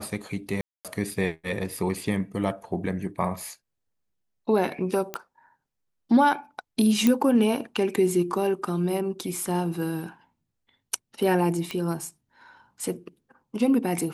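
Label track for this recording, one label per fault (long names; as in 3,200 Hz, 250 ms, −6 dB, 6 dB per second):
0.610000	0.850000	drop-out 237 ms
5.140000	5.140000	click −14 dBFS
7.070000	7.070000	click −8 dBFS
11.710000	11.710000	click −16 dBFS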